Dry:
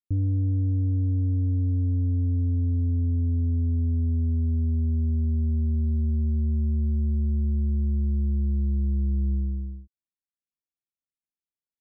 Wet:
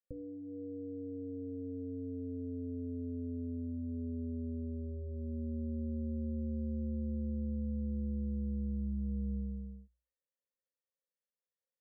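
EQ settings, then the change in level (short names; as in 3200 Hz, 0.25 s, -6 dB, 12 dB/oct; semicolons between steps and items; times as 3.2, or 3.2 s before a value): vocal tract filter e; notches 60/120/180/240/300/360/420/480 Hz; fixed phaser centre 490 Hz, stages 8; +14.0 dB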